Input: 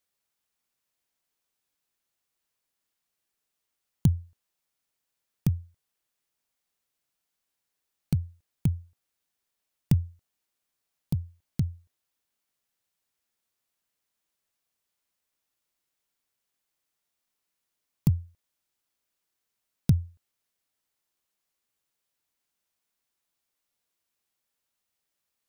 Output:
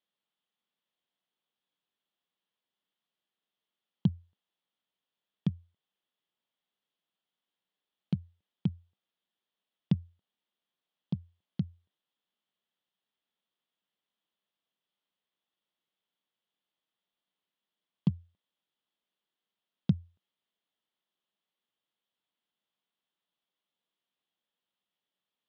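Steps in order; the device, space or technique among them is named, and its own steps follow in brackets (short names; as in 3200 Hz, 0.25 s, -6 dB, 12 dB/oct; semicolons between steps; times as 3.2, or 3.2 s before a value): kitchen radio (speaker cabinet 170–3700 Hz, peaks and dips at 190 Hz +7 dB, 1500 Hz -3 dB, 2300 Hz -5 dB, 3300 Hz +8 dB); gain -3 dB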